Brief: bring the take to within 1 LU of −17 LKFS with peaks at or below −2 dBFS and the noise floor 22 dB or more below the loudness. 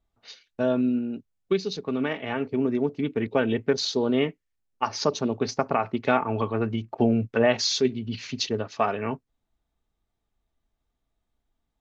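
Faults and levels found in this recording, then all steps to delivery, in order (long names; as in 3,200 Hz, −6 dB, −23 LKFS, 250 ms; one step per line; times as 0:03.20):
integrated loudness −26.0 LKFS; sample peak −8.0 dBFS; target loudness −17.0 LKFS
→ level +9 dB
brickwall limiter −2 dBFS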